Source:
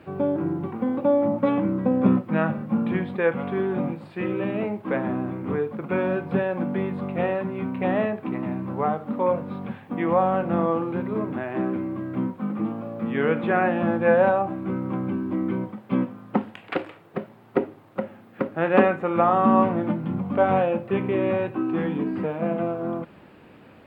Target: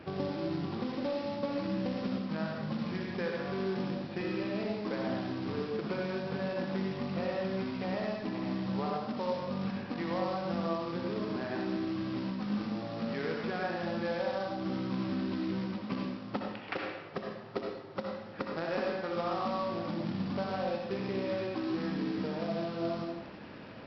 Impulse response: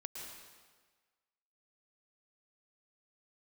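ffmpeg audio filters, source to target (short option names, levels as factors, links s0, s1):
-filter_complex "[0:a]acompressor=threshold=0.02:ratio=6,aresample=11025,acrusher=bits=3:mode=log:mix=0:aa=0.000001,aresample=44100[s0];[1:a]atrim=start_sample=2205,asetrate=74970,aresample=44100[s1];[s0][s1]afir=irnorm=-1:irlink=0,volume=2.82"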